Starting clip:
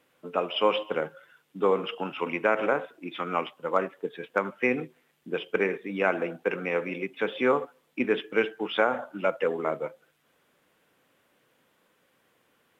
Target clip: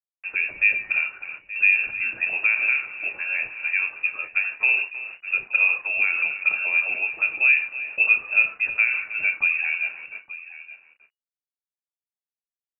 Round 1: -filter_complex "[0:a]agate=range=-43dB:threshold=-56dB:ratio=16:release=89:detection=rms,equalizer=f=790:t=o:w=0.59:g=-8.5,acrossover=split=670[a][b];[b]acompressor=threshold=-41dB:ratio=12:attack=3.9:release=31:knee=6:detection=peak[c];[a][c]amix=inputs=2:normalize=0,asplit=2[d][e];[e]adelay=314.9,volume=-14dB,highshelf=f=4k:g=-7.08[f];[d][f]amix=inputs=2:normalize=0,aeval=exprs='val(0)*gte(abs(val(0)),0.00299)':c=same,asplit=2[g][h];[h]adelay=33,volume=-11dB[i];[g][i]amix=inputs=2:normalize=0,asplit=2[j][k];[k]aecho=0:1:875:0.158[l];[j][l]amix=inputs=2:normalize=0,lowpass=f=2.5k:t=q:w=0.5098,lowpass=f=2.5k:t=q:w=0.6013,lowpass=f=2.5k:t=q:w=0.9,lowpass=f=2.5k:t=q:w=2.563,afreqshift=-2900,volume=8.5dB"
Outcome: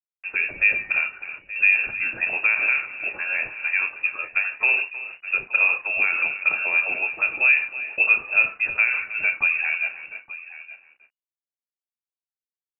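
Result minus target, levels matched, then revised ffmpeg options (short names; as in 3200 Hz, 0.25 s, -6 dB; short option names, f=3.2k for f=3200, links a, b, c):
compressor: peak gain reduction -7 dB
-filter_complex "[0:a]agate=range=-43dB:threshold=-56dB:ratio=16:release=89:detection=rms,equalizer=f=790:t=o:w=0.59:g=-8.5,acrossover=split=670[a][b];[b]acompressor=threshold=-48.5dB:ratio=12:attack=3.9:release=31:knee=6:detection=peak[c];[a][c]amix=inputs=2:normalize=0,asplit=2[d][e];[e]adelay=314.9,volume=-14dB,highshelf=f=4k:g=-7.08[f];[d][f]amix=inputs=2:normalize=0,aeval=exprs='val(0)*gte(abs(val(0)),0.00299)':c=same,asplit=2[g][h];[h]adelay=33,volume=-11dB[i];[g][i]amix=inputs=2:normalize=0,asplit=2[j][k];[k]aecho=0:1:875:0.158[l];[j][l]amix=inputs=2:normalize=0,lowpass=f=2.5k:t=q:w=0.5098,lowpass=f=2.5k:t=q:w=0.6013,lowpass=f=2.5k:t=q:w=0.9,lowpass=f=2.5k:t=q:w=2.563,afreqshift=-2900,volume=8.5dB"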